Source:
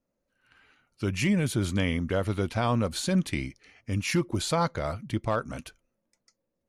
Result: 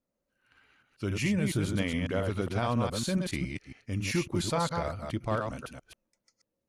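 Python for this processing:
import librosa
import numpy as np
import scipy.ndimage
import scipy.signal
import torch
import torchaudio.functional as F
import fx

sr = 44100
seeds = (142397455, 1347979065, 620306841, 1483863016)

y = fx.reverse_delay(x, sr, ms=138, wet_db=-4)
y = fx.cheby_harmonics(y, sr, harmonics=(2,), levels_db=(-22,), full_scale_db=-13.0)
y = y * librosa.db_to_amplitude(-4.0)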